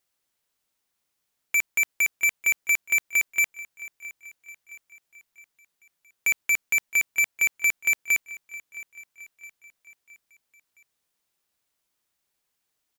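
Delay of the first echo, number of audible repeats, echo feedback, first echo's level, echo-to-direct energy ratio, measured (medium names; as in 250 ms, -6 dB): 666 ms, 3, 50%, -18.5 dB, -17.5 dB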